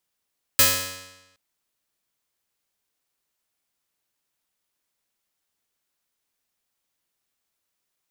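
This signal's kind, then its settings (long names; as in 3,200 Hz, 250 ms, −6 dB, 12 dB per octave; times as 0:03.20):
Karplus-Strong string F#2, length 0.77 s, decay 1.03 s, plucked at 0.24, bright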